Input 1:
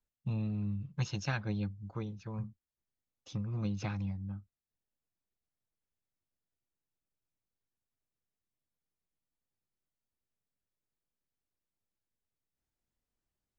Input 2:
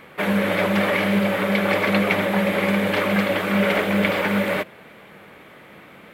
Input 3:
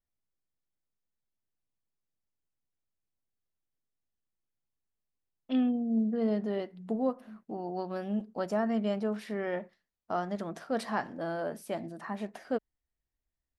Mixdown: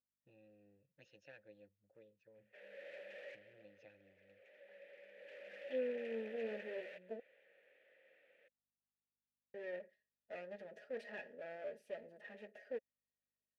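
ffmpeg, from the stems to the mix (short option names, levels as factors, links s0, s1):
-filter_complex "[0:a]aeval=exprs='val(0)+0.000501*(sin(2*PI*50*n/s)+sin(2*PI*2*50*n/s)/2+sin(2*PI*3*50*n/s)/3+sin(2*PI*4*50*n/s)/4+sin(2*PI*5*50*n/s)/5)':c=same,volume=0.355,asplit=2[s0][s1];[1:a]equalizer=f=140:w=0.42:g=-13,asoftclip=type=tanh:threshold=0.0841,adelay=2350,volume=0.75,afade=t=out:st=3.47:d=0.4:silence=0.334965,afade=t=in:st=5.13:d=0.61:silence=0.251189[s2];[2:a]aecho=1:1:4.8:0.91,adelay=200,volume=0.944,asplit=3[s3][s4][s5];[s3]atrim=end=7.2,asetpts=PTS-STARTPTS,afade=t=out:st=7.196:d=0.004:c=hsin[s6];[s4]atrim=start=7.2:end=9.54,asetpts=PTS-STARTPTS,volume=0[s7];[s5]atrim=start=9.54,asetpts=PTS-STARTPTS,afade=t=in:d=0.004:c=hsin[s8];[s6][s7][s8]concat=n=3:v=0:a=1[s9];[s1]apad=whole_len=373973[s10];[s2][s10]sidechaincompress=threshold=0.002:ratio=5:attack=37:release=591[s11];[s0][s11][s9]amix=inputs=3:normalize=0,aeval=exprs='clip(val(0),-1,0.00501)':c=same,asplit=3[s12][s13][s14];[s12]bandpass=f=530:t=q:w=8,volume=1[s15];[s13]bandpass=f=1840:t=q:w=8,volume=0.501[s16];[s14]bandpass=f=2480:t=q:w=8,volume=0.355[s17];[s15][s16][s17]amix=inputs=3:normalize=0,highshelf=f=6000:g=4.5"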